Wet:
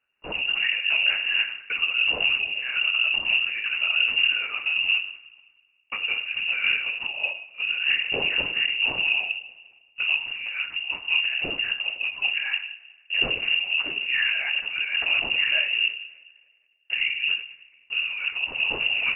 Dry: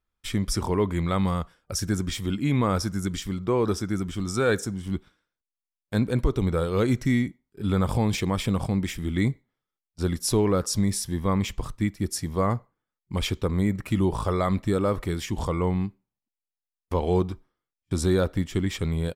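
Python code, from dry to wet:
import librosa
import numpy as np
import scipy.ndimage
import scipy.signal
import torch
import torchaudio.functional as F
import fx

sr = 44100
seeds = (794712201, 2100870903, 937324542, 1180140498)

y = fx.over_compress(x, sr, threshold_db=-27.0, ratio=-0.5)
y = fx.rev_double_slope(y, sr, seeds[0], early_s=0.58, late_s=1.9, knee_db=-18, drr_db=1.5)
y = fx.lpc_vocoder(y, sr, seeds[1], excitation='whisper', order=8)
y = fx.freq_invert(y, sr, carrier_hz=2800)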